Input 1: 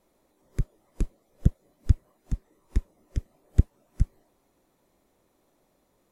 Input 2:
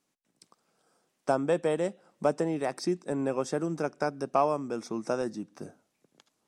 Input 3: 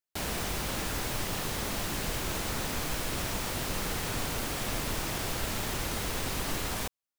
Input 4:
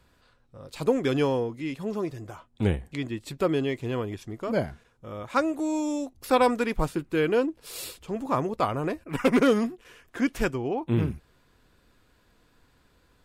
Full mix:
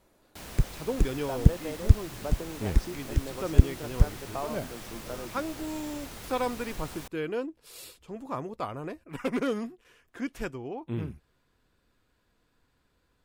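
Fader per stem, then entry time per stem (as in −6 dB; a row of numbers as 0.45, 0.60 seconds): +2.5, −10.5, −10.0, −8.5 decibels; 0.00, 0.00, 0.20, 0.00 seconds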